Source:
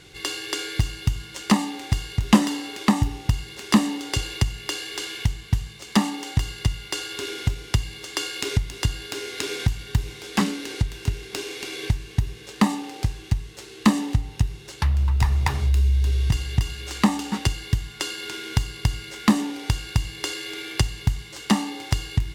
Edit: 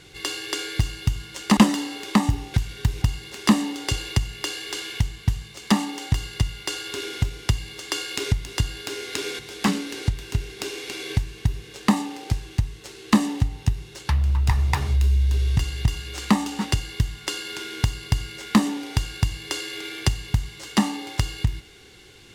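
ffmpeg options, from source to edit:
-filter_complex "[0:a]asplit=5[a][b][c][d][e];[a]atrim=end=1.572[f];[b]atrim=start=2.298:end=3.272[g];[c]atrim=start=9.638:end=10.122[h];[d]atrim=start=3.268:end=9.642[i];[e]atrim=start=10.118[j];[f][g]acrossfade=d=0.004:c1=hsin:c2=hsin[k];[k][h]acrossfade=d=0.004:c1=hsin:c2=hsin[l];[l][i]acrossfade=d=0.004:c1=hsin:c2=hsin[m];[m][j]acrossfade=d=0.004:c1=hsin:c2=hsin"

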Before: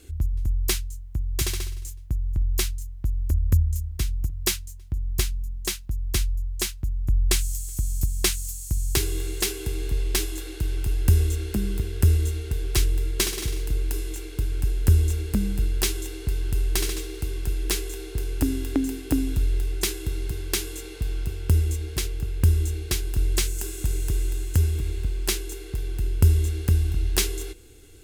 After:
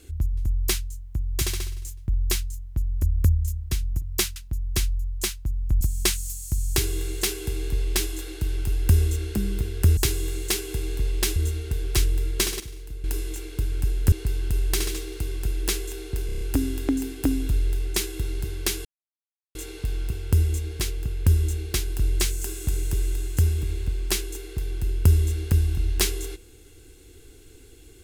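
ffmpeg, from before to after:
-filter_complex "[0:a]asplit=15[a][b][c][d][e][f][g][h][i][j][k][l][m][n][o];[a]atrim=end=2.082[p];[b]atrim=start=2.358:end=4.642[q];[c]atrim=start=5.738:end=7.192[r];[d]atrim=start=7.998:end=12.162[s];[e]atrim=start=8.888:end=10.282[t];[f]atrim=start=12.158:end=13.402[u];[g]atrim=start=13.398:end=13.842,asetpts=PTS-STARTPTS,volume=-11dB[v];[h]atrim=start=13.838:end=14.922[w];[i]atrim=start=16.138:end=18.312[x];[j]atrim=start=18.278:end=18.312[y];[k]atrim=start=18.278:end=18.312[z];[l]atrim=start=18.278:end=18.312[aa];[m]atrim=start=18.278:end=18.312[ab];[n]atrim=start=18.278:end=20.72,asetpts=PTS-STARTPTS,afade=t=out:st=2.438:d=0.004:c=hsin,apad=pad_dur=0.7[ac];[o]atrim=start=20.72,asetpts=PTS-STARTPTS,afade=t=in:d=0.004:c=hsin[ad];[p][q]acrossfade=d=0.004:c1=hsin:c2=hsin[ae];[ae][r]acrossfade=d=0.004:c1=hsin:c2=hsin[af];[af][s]acrossfade=d=0.004:c1=hsin:c2=hsin[ag];[ag][t]acrossfade=d=0.004:c1=hsin:c2=hsin[ah];[ah][u]acrossfade=d=0.004:c1=hsin:c2=hsin[ai];[ai][v]acrossfade=d=0.004:c1=hsin:c2=hsin[aj];[aj][w]acrossfade=d=0.004:c1=hsin:c2=hsin[ak];[ak][x]acrossfade=d=0.004:c1=hsin:c2=hsin[al];[al][y]acrossfade=d=0.004:c1=hsin:c2=hsin[am];[am][z]acrossfade=d=0.004:c1=hsin:c2=hsin[an];[an][aa]acrossfade=d=0.004:c1=hsin:c2=hsin[ao];[ao][ab]acrossfade=d=0.004:c1=hsin:c2=hsin[ap];[ac][ad]concat=n=2:v=0:a=1[aq];[ap][aq]acrossfade=d=0.004:c1=hsin:c2=hsin"

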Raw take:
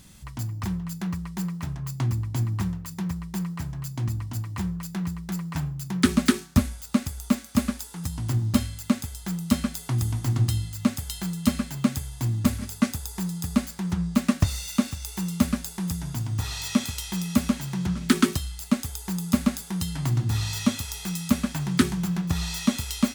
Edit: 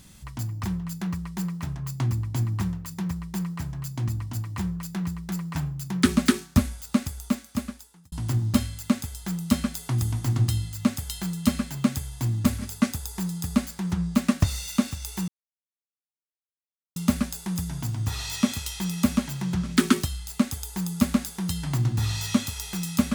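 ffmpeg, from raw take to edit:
-filter_complex "[0:a]asplit=3[a][b][c];[a]atrim=end=8.12,asetpts=PTS-STARTPTS,afade=t=out:st=7.02:d=1.1[d];[b]atrim=start=8.12:end=15.28,asetpts=PTS-STARTPTS,afade=t=in:d=0.004:c=hsin,afade=t=out:st=7.156:d=0.004:c=hsin,apad=pad_dur=1.68[e];[c]atrim=start=15.28,asetpts=PTS-STARTPTS,afade=t=in:d=0.004:c=hsin[f];[d][e][f]concat=n=3:v=0:a=1"

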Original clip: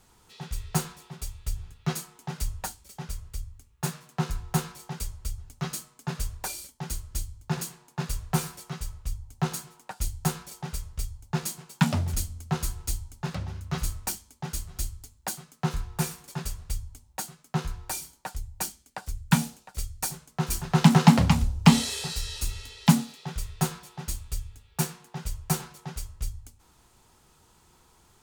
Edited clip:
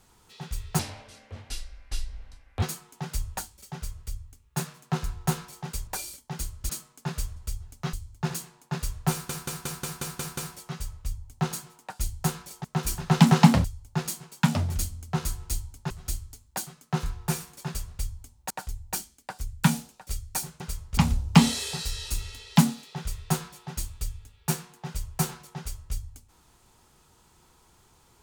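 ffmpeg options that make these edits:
-filter_complex "[0:a]asplit=20[a][b][c][d][e][f][g][h][i][j][k][l][m][n][o][p][q][r][s][t];[a]atrim=end=0.794[u];[b]atrim=start=0.79:end=1.89,asetpts=PTS-STARTPTS,asetrate=26460,aresample=44100[v];[c]atrim=start=1.886:end=5.142[w];[d]atrim=start=6.378:end=7.202[x];[e]atrim=start=5.708:end=6.382[y];[f]atrim=start=5.138:end=5.712[z];[g]atrim=start=7.198:end=8.562[aa];[h]atrim=start=8.378:end=8.562[ab];[i]atrim=start=8.378:end=8.562[ac];[j]atrim=start=8.378:end=8.562[ad];[k]atrim=start=8.378:end=8.562[ae];[l]atrim=start=8.378:end=8.562[af];[m]atrim=start=8.378:end=8.562[ag];[n]atrim=start=8.378:end=10.652[ah];[o]atrim=start=20.278:end=21.282[ai];[p]atrim=start=11.018:end=13.282[aj];[q]atrim=start=14.608:end=17.212[ak];[r]atrim=start=18.178:end=20.282[al];[s]atrim=start=10.648:end=11.022[am];[t]atrim=start=21.278[an];[u][v]acrossfade=d=0.004:c1=hsin:c2=hsin[ao];[ao][w]acrossfade=d=0.004:c1=hsin:c2=hsin[ap];[ap][x]acrossfade=d=0.004:c1=hsin:c2=hsin[aq];[aq][y]acrossfade=d=0.004:c1=hsin:c2=hsin[ar];[ar][z]acrossfade=d=0.004:c1=hsin:c2=hsin[as];[as][aa]acrossfade=d=0.004:c1=hsin:c2=hsin[at];[at][ab]acrossfade=d=0.004:c1=hsin:c2=hsin[au];[au][ac]acrossfade=d=0.004:c1=hsin:c2=hsin[av];[av][ad]acrossfade=d=0.004:c1=hsin:c2=hsin[aw];[aw][ae]acrossfade=d=0.004:c1=hsin:c2=hsin[ax];[ax][af]acrossfade=d=0.004:c1=hsin:c2=hsin[ay];[ay][ag]acrossfade=d=0.004:c1=hsin:c2=hsin[az];[az][ah]acrossfade=d=0.004:c1=hsin:c2=hsin[ba];[ba][ai]acrossfade=d=0.004:c1=hsin:c2=hsin[bb];[bb][aj]acrossfade=d=0.004:c1=hsin:c2=hsin[bc];[bc][ak]acrossfade=d=0.004:c1=hsin:c2=hsin[bd];[bd][al]acrossfade=d=0.004:c1=hsin:c2=hsin[be];[be][am]acrossfade=d=0.004:c1=hsin:c2=hsin[bf];[bf][an]acrossfade=d=0.004:c1=hsin:c2=hsin"

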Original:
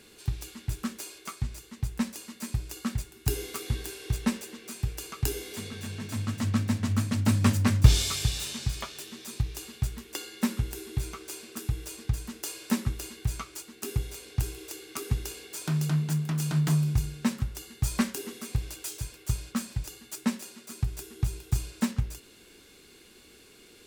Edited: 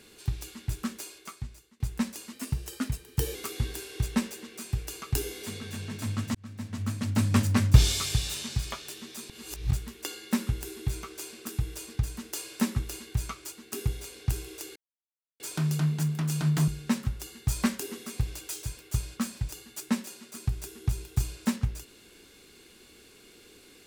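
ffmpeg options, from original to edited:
-filter_complex "[0:a]asplit=10[a][b][c][d][e][f][g][h][i][j];[a]atrim=end=1.8,asetpts=PTS-STARTPTS,afade=t=out:st=0.95:d=0.85:silence=0.0891251[k];[b]atrim=start=1.8:end=2.334,asetpts=PTS-STARTPTS,afade=t=in:d=0.004:c=hsin:silence=0.0891251[l];[c]atrim=start=2.33:end=3.45,asetpts=PTS-STARTPTS,asetrate=48510,aresample=44100[m];[d]atrim=start=3.446:end=6.45,asetpts=PTS-STARTPTS,afade=t=out:st=3:d=0.004:c=hsin[n];[e]atrim=start=6.45:end=9.402,asetpts=PTS-STARTPTS,afade=t=in:d=1.37:c=qsin[o];[f]atrim=start=9.398:end=9.812,asetpts=PTS-STARTPTS,areverse[p];[g]atrim=start=9.808:end=14.86,asetpts=PTS-STARTPTS,afade=t=out:st=5.048:d=0.004:c=hsin[q];[h]atrim=start=14.86:end=15.5,asetpts=PTS-STARTPTS,volume=0[r];[i]atrim=start=15.5:end=16.782,asetpts=PTS-STARTPTS,afade=t=in:d=0.004:c=hsin[s];[j]atrim=start=17.028[t];[k][l]concat=n=2:v=0:a=1[u];[u][m]acrossfade=d=0.004:c1=hsin:c2=hsin[v];[n][o]concat=n=2:v=0:a=1[w];[v][w]acrossfade=d=0.004:c1=hsin:c2=hsin[x];[x][p]acrossfade=d=0.004:c1=hsin:c2=hsin[y];[q][r][s]concat=n=3:v=0:a=1[z];[y][z]acrossfade=d=0.004:c1=hsin:c2=hsin[aa];[aa][t]acrossfade=d=0.004:c1=hsin:c2=hsin"

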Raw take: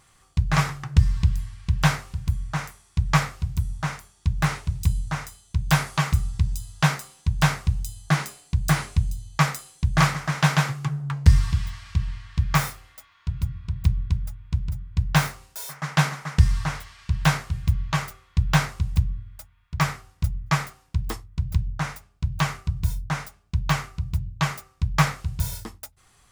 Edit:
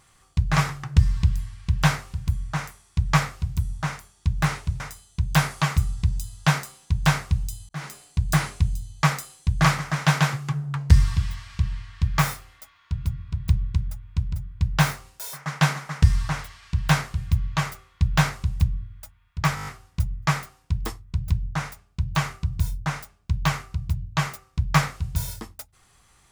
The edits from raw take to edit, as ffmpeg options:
-filter_complex "[0:a]asplit=9[a][b][c][d][e][f][g][h][i];[a]atrim=end=4.802[j];[b]atrim=start=5.158:end=8.05,asetpts=PTS-STARTPTS,afade=t=out:st=2.888:d=0.004:c=hsin[k];[c]atrim=start=8.05:end=19.932,asetpts=PTS-STARTPTS,afade=t=in:d=0.36[l];[d]atrim=start=19.908:end=19.932[m];[e]atrim=start=19.908:end=19.932[n];[f]atrim=start=19.908:end=19.932[o];[g]atrim=start=19.908:end=19.932[p];[h]atrim=start=19.908:end=19.932[q];[i]atrim=start=19.908[r];[k][l]concat=n=2:v=0:a=1[s];[j][s]acrossfade=d=0.004:c1=hsin:c2=hsin[t];[t][m]acrossfade=d=0.004:c1=hsin:c2=hsin[u];[u][n]acrossfade=d=0.004:c1=hsin:c2=hsin[v];[v][o]acrossfade=d=0.004:c1=hsin:c2=hsin[w];[w][p]acrossfade=d=0.004:c1=hsin:c2=hsin[x];[x][q]acrossfade=d=0.004:c1=hsin:c2=hsin[y];[y][r]acrossfade=d=0.004:c1=hsin:c2=hsin"

